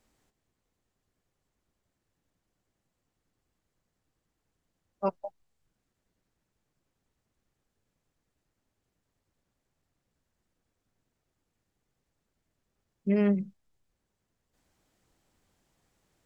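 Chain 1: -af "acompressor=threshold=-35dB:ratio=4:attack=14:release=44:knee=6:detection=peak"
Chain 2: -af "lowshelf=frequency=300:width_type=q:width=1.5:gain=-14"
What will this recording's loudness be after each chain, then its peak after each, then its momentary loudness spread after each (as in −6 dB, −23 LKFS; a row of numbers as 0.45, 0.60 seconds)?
−39.0, −33.5 LKFS; −25.0, −15.0 dBFS; 12, 12 LU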